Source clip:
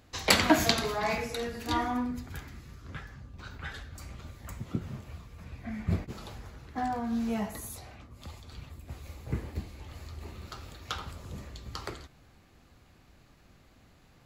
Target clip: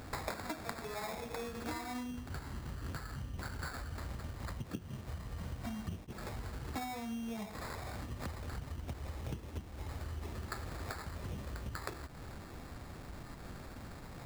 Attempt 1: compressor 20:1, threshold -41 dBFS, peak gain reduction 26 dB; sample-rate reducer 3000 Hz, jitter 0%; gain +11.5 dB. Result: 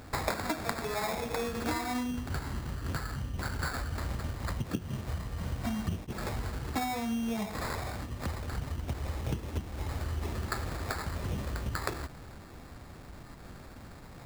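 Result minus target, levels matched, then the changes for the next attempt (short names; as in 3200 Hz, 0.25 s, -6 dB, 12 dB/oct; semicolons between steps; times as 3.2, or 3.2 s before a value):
compressor: peak gain reduction -8 dB
change: compressor 20:1, threshold -49.5 dBFS, peak gain reduction 34 dB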